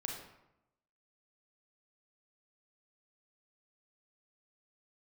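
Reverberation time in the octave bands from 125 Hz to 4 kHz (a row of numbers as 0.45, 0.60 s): 0.95, 0.95, 0.90, 0.85, 0.75, 0.55 s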